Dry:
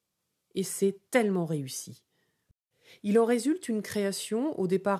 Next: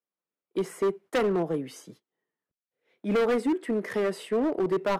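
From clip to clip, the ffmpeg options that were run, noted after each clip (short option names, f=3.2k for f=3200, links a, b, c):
-filter_complex "[0:a]agate=range=-16dB:threshold=-49dB:ratio=16:detection=peak,acrossover=split=220 2400:gain=0.0891 1 0.126[a][b][c];[a][b][c]amix=inputs=3:normalize=0,asoftclip=type=hard:threshold=-27.5dB,volume=6.5dB"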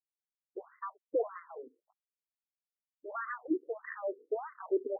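-af "aeval=exprs='sgn(val(0))*max(abs(val(0))-0.00447,0)':c=same,agate=range=-33dB:threshold=-42dB:ratio=3:detection=peak,afftfilt=real='re*between(b*sr/1024,340*pow(1500/340,0.5+0.5*sin(2*PI*1.6*pts/sr))/1.41,340*pow(1500/340,0.5+0.5*sin(2*PI*1.6*pts/sr))*1.41)':imag='im*between(b*sr/1024,340*pow(1500/340,0.5+0.5*sin(2*PI*1.6*pts/sr))/1.41,340*pow(1500/340,0.5+0.5*sin(2*PI*1.6*pts/sr))*1.41)':win_size=1024:overlap=0.75,volume=-2dB"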